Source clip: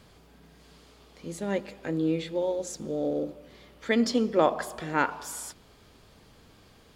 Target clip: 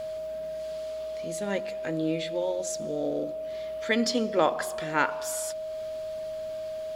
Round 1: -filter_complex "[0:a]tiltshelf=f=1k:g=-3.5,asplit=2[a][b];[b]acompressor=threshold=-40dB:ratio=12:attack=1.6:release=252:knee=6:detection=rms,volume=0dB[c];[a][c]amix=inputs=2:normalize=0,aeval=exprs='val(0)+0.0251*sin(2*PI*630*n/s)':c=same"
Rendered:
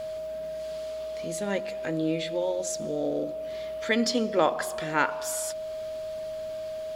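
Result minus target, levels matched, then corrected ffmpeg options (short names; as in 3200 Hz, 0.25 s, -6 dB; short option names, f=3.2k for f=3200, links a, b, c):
compressor: peak gain reduction -11 dB
-filter_complex "[0:a]tiltshelf=f=1k:g=-3.5,asplit=2[a][b];[b]acompressor=threshold=-52dB:ratio=12:attack=1.6:release=252:knee=6:detection=rms,volume=0dB[c];[a][c]amix=inputs=2:normalize=0,aeval=exprs='val(0)+0.0251*sin(2*PI*630*n/s)':c=same"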